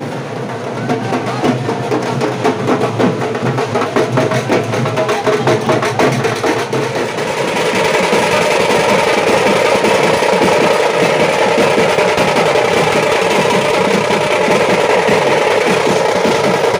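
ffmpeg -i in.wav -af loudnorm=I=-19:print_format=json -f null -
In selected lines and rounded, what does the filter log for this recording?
"input_i" : "-12.8",
"input_tp" : "-2.1",
"input_lra" : "3.6",
"input_thresh" : "-22.8",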